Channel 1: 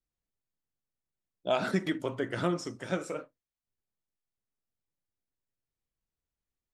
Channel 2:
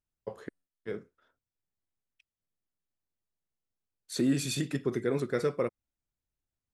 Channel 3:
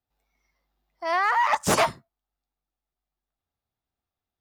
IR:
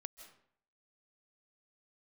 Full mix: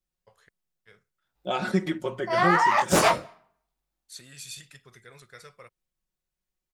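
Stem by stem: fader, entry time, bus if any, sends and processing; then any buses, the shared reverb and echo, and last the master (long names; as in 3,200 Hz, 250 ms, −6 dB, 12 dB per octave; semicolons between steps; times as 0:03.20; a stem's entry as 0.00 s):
0.0 dB, 0.00 s, no send, comb filter 5.5 ms, depth 88%
−3.5 dB, 0.00 s, no send, guitar amp tone stack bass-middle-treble 10-0-10
+3.0 dB, 1.25 s, send −14 dB, chorus effect 0.88 Hz, delay 16.5 ms, depth 7.7 ms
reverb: on, RT60 0.65 s, pre-delay 120 ms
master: no processing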